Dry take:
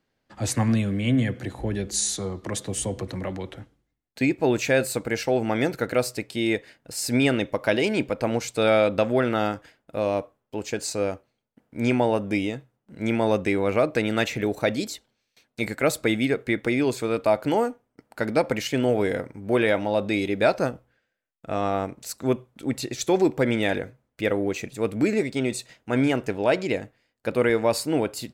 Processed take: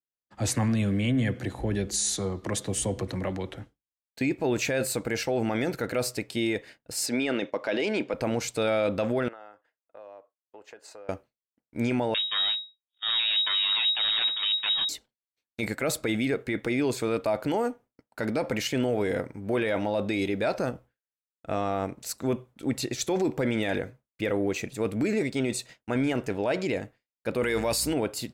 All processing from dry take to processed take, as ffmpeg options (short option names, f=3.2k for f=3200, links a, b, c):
-filter_complex "[0:a]asettb=1/sr,asplit=3[a][b][c];[a]atrim=end=7.064[d];[b]atrim=start=7.06:end=8.14,asetpts=PTS-STARTPTS,afade=t=in:d=0.004:c=qsin,afade=t=out:st=1.076:d=0.004:c=qsin,agate=range=-33dB:threshold=-40dB:ratio=3:release=100:detection=peak,highpass=250,lowpass=5.8k[e];[c]atrim=start=8.136[f];[d][e]acrossfade=d=0.004:c1=hsin:c2=qsin[g];[g][f]acrossfade=d=0.004:c1=qsin:c2=hsin,asettb=1/sr,asplit=3[h][i][j];[h]atrim=end=9.284[k];[i]atrim=start=9.28:end=11.09,asetpts=PTS-STARTPTS,afade=t=in:d=0.004:c=qsin,afade=t=out:st=1.806:d=0.004:c=qsin,acrossover=split=420 2400:gain=0.0794 1 0.158[l][m][n];[l][m][n]amix=inputs=3:normalize=0,bandreject=f=2.3k:w=8.7,acompressor=threshold=-40dB:ratio=20:attack=3.2:release=140:knee=1:detection=peak[o];[j]atrim=start=11.086[p];[k][o]acrossfade=d=0.004:c1=hsin:c2=qsin[q];[q][p]acrossfade=d=0.004:c1=qsin:c2=hsin,asettb=1/sr,asplit=3[r][s][t];[r]atrim=end=12.144[u];[s]atrim=start=12.14:end=14.89,asetpts=PTS-STARTPTS,afade=t=in:d=0.004:c=qsin,afade=t=out:st=2.746:d=0.004:c=qsin,agate=range=-10dB:threshold=-31dB:ratio=16:release=100:detection=peak,aeval=exprs='abs(val(0))':c=same,lowpass=f=3.2k:t=q:w=0.5098,lowpass=f=3.2k:t=q:w=0.6013,lowpass=f=3.2k:t=q:w=0.9,lowpass=f=3.2k:t=q:w=2.563,afreqshift=-3800[v];[t]atrim=start=14.886[w];[u][v]acrossfade=d=0.004:c1=hsin:c2=qsin[x];[x][w]acrossfade=d=0.004:c1=qsin:c2=hsin,asettb=1/sr,asplit=3[y][z][aa];[y]atrim=end=27.434[ab];[z]atrim=start=27.43:end=27.94,asetpts=PTS-STARTPTS,afade=t=in:d=0.004:c=qsin,afade=t=out:st=0.506:d=0.004:c=qsin,highshelf=f=2.4k:g=12,aeval=exprs='val(0)+0.0126*(sin(2*PI*60*n/s)+sin(2*PI*2*60*n/s)/2+sin(2*PI*3*60*n/s)/3+sin(2*PI*4*60*n/s)/4+sin(2*PI*5*60*n/s)/5)':c=same[ac];[aa]atrim=start=27.936[ad];[ab][ac]acrossfade=d=0.004:c1=hsin:c2=qsin[ae];[ae][ad]acrossfade=d=0.004:c1=qsin:c2=hsin,agate=range=-33dB:threshold=-42dB:ratio=3:detection=peak,alimiter=limit=-18dB:level=0:latency=1:release=11"